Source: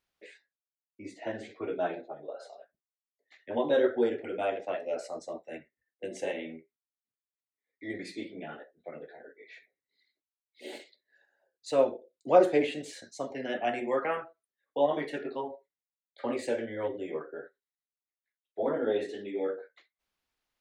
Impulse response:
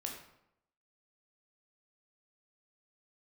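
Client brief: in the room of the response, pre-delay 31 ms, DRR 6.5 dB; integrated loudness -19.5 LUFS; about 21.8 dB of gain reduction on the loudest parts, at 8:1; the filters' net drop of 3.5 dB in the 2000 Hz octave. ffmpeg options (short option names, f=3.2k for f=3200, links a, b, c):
-filter_complex "[0:a]equalizer=f=2k:t=o:g=-4.5,acompressor=threshold=-38dB:ratio=8,asplit=2[a][b];[1:a]atrim=start_sample=2205,adelay=31[c];[b][c]afir=irnorm=-1:irlink=0,volume=-6dB[d];[a][d]amix=inputs=2:normalize=0,volume=24dB"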